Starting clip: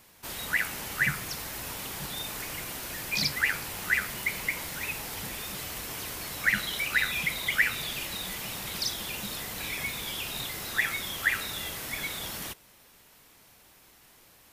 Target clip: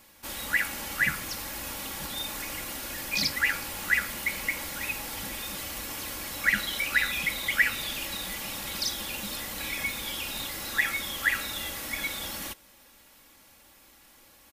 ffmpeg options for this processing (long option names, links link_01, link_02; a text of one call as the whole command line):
ffmpeg -i in.wav -af "aecho=1:1:3.6:0.5" out.wav